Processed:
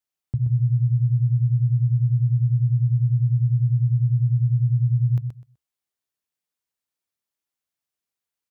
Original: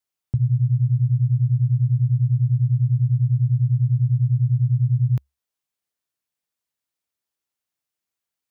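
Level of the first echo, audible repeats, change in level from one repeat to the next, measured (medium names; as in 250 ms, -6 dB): -7.0 dB, 2, -14.5 dB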